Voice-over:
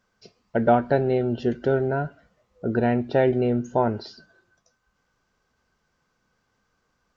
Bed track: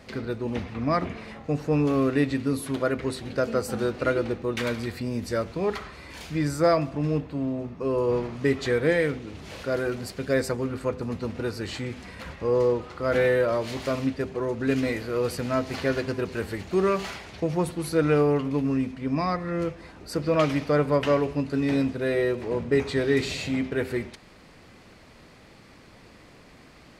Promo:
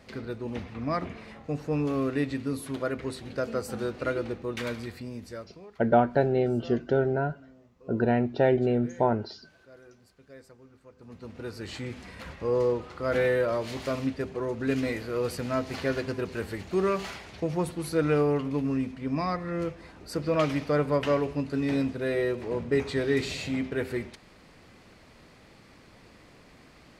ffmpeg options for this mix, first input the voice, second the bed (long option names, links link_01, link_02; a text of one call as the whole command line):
ffmpeg -i stem1.wav -i stem2.wav -filter_complex "[0:a]adelay=5250,volume=-2.5dB[link_01];[1:a]volume=17.5dB,afade=type=out:start_time=4.71:duration=1:silence=0.0944061,afade=type=in:start_time=10.94:duration=0.99:silence=0.0749894[link_02];[link_01][link_02]amix=inputs=2:normalize=0" out.wav